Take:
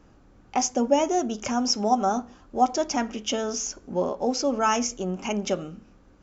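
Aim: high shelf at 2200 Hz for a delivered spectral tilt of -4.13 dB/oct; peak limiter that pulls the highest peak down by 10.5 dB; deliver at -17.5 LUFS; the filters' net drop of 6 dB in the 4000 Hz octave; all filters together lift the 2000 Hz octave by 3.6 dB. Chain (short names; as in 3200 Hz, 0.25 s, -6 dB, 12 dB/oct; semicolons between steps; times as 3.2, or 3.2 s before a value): bell 2000 Hz +9 dB; high shelf 2200 Hz -4.5 dB; bell 4000 Hz -7.5 dB; gain +12.5 dB; limiter -7 dBFS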